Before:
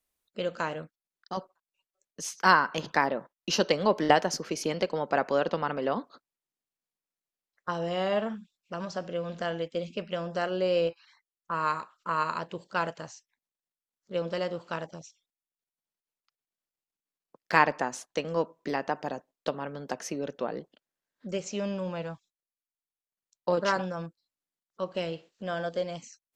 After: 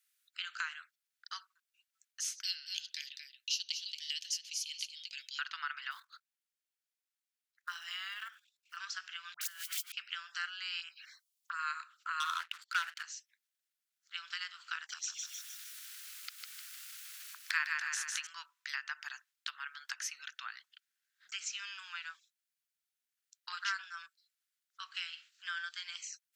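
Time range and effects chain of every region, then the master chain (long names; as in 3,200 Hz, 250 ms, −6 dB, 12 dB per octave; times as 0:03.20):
0:02.43–0:05.39: Butterworth high-pass 2,900 Hz + single-tap delay 227 ms −10 dB
0:05.91–0:08.77: one scale factor per block 7 bits + output level in coarse steps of 11 dB
0:09.34–0:09.92: spike at every zero crossing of −27.5 dBFS + compressor whose output falls as the input rises −37 dBFS, ratio −0.5 + all-pass dispersion highs, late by 74 ms, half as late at 1,400 Hz
0:10.80–0:11.59: high-shelf EQ 2,200 Hz +7.5 dB + downward compressor, threshold −27 dBFS + phaser swept by the level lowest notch 220 Hz, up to 4,400 Hz, full sweep at −28.5 dBFS
0:12.20–0:13.03: spectral envelope exaggerated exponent 1.5 + leveller curve on the samples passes 3
0:14.89–0:18.27: upward compression, threshold −25 dBFS + repeating echo 153 ms, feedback 45%, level −5 dB
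whole clip: elliptic high-pass filter 1,400 Hz, stop band 60 dB; downward compressor 2 to 1, threshold −46 dBFS; level +6 dB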